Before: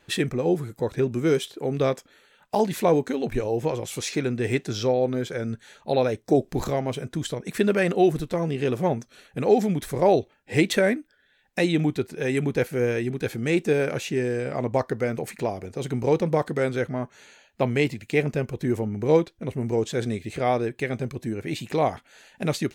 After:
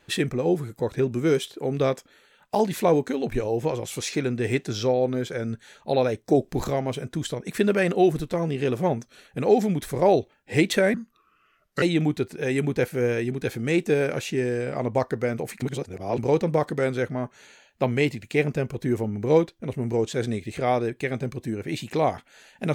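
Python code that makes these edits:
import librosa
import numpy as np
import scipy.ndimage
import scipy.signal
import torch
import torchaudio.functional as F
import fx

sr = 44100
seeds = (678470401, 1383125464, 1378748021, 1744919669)

y = fx.edit(x, sr, fx.speed_span(start_s=10.94, length_s=0.67, speed=0.76),
    fx.reverse_span(start_s=15.41, length_s=0.56), tone=tone)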